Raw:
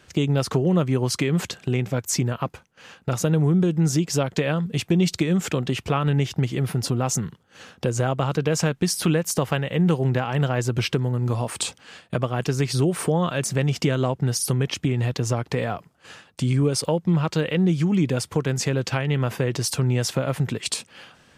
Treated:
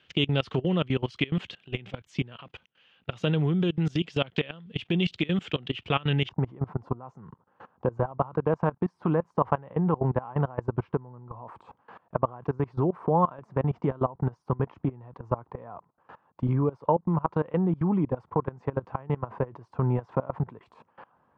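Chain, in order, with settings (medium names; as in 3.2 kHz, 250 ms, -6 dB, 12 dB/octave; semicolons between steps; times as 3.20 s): high-pass 69 Hz 6 dB/octave; level held to a coarse grid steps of 22 dB; resonant low-pass 3.1 kHz, resonance Q 4.1, from 6.29 s 1 kHz; trim -2 dB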